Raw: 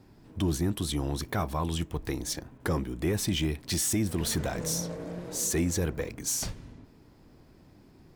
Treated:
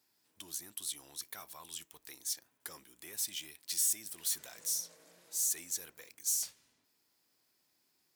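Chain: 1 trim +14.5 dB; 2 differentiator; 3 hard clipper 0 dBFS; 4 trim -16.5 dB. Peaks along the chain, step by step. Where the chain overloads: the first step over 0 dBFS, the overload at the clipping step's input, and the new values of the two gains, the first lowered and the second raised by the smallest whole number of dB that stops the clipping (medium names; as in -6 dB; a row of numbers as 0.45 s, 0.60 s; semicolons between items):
-6.0 dBFS, -3.0 dBFS, -3.0 dBFS, -19.5 dBFS; nothing clips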